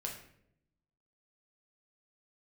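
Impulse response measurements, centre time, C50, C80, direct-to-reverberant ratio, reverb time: 28 ms, 6.5 dB, 9.5 dB, -0.5 dB, 0.70 s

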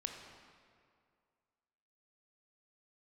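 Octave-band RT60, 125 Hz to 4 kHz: 2.1, 2.1, 2.2, 2.2, 1.8, 1.5 s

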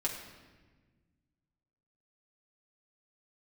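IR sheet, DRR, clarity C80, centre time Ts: -3.5 dB, 7.0 dB, 37 ms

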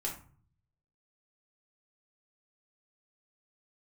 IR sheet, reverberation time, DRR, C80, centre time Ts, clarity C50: 0.45 s, -3.0 dB, 13.0 dB, 23 ms, 7.5 dB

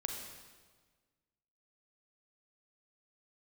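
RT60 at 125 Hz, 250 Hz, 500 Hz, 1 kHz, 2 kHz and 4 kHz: 1.8, 1.7, 1.5, 1.4, 1.3, 1.3 s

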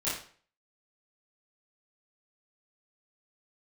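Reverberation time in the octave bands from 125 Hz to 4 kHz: 0.45, 0.45, 0.45, 0.45, 0.45, 0.40 s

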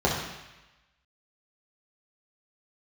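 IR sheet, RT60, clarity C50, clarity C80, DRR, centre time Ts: 1.0 s, 3.0 dB, 5.5 dB, -5.0 dB, 49 ms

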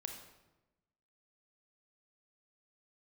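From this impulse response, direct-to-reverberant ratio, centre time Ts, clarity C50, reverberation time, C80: 3.5 dB, 30 ms, 5.5 dB, 1.0 s, 8.0 dB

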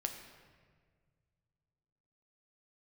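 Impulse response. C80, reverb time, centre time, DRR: 8.0 dB, 1.7 s, 31 ms, 4.0 dB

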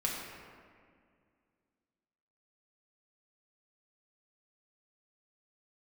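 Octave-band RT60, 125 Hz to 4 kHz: 2.4, 2.7, 2.2, 1.9, 1.8, 1.2 s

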